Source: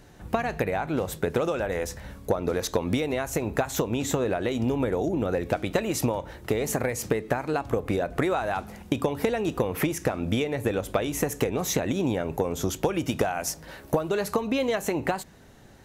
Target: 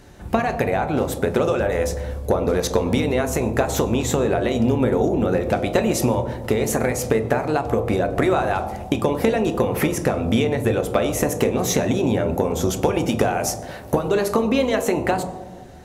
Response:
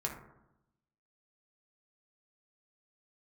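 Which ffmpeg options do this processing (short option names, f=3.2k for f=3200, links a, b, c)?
-filter_complex "[0:a]asplit=2[a][b];[1:a]atrim=start_sample=2205,asetrate=23814,aresample=44100[c];[b][c]afir=irnorm=-1:irlink=0,volume=-4.5dB[d];[a][d]amix=inputs=2:normalize=0"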